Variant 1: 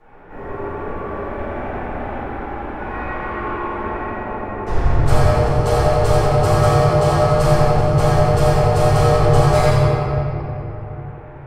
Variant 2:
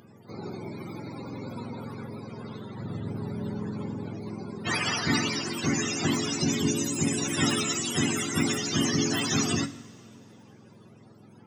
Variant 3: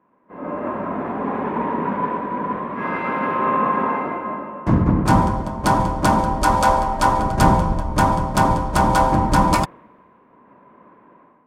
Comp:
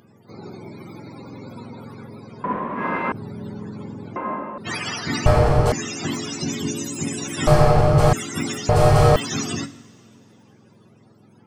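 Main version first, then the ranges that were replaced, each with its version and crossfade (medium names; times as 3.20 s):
2
2.44–3.12 s: from 3
4.16–4.58 s: from 3
5.26–5.72 s: from 1
7.47–8.13 s: from 1
8.69–9.16 s: from 1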